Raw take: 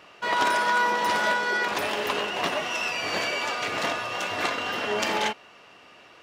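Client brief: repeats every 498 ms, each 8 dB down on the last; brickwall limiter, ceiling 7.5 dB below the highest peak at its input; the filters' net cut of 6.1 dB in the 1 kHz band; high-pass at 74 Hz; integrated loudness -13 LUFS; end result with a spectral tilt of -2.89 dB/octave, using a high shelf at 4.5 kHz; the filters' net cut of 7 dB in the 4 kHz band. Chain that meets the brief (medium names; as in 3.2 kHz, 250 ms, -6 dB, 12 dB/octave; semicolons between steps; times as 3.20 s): high-pass 74 Hz; peaking EQ 1 kHz -6.5 dB; peaking EQ 4 kHz -8 dB; treble shelf 4.5 kHz -3.5 dB; peak limiter -23 dBFS; feedback delay 498 ms, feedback 40%, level -8 dB; trim +18.5 dB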